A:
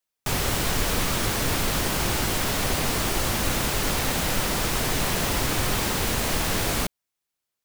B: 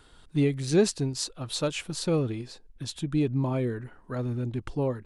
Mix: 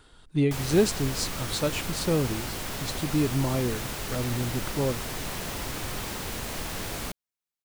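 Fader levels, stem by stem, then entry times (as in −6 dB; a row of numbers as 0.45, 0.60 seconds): −9.0, +0.5 decibels; 0.25, 0.00 seconds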